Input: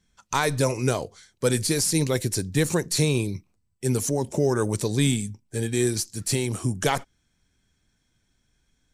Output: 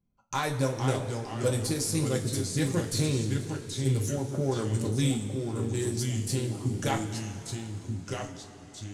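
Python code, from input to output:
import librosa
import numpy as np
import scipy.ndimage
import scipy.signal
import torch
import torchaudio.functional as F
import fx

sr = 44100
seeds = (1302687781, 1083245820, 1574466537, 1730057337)

y = fx.wiener(x, sr, points=25)
y = fx.echo_pitch(y, sr, ms=420, semitones=-2, count=2, db_per_echo=-6.0)
y = fx.rev_double_slope(y, sr, seeds[0], early_s=0.24, late_s=3.7, knee_db=-18, drr_db=0.5)
y = y * librosa.db_to_amplitude(-8.0)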